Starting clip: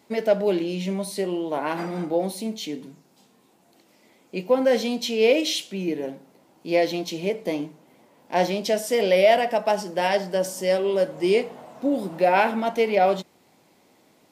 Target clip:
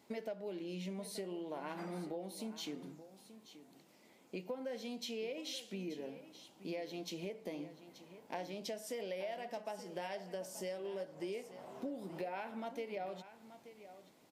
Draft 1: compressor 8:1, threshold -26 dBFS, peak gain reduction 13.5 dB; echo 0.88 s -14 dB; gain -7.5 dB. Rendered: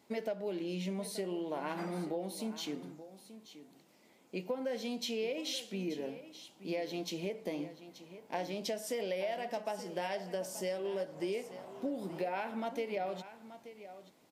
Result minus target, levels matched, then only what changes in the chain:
compressor: peak gain reduction -5.5 dB
change: compressor 8:1, threshold -32.5 dBFS, peak gain reduction 19.5 dB

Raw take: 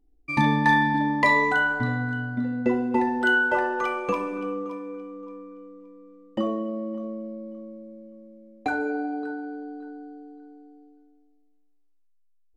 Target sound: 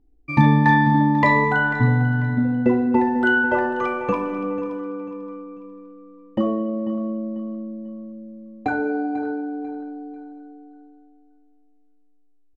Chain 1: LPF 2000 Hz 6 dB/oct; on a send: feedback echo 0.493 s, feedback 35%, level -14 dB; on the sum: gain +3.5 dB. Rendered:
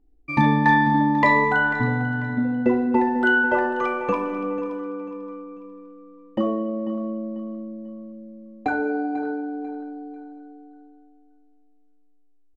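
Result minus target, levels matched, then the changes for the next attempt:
125 Hz band -5.5 dB
add after LPF: bell 120 Hz +8 dB 1.3 oct

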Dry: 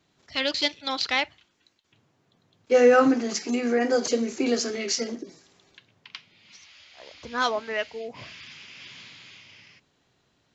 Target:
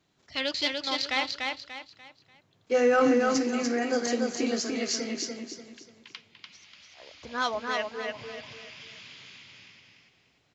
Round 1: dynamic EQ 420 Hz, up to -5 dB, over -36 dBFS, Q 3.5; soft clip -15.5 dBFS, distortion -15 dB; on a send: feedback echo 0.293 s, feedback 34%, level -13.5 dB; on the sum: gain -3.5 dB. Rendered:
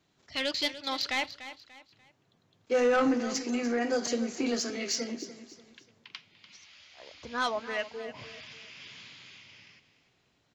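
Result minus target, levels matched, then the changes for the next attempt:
soft clip: distortion +14 dB; echo-to-direct -10 dB
change: soft clip -6 dBFS, distortion -29 dB; change: feedback echo 0.293 s, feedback 34%, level -3.5 dB

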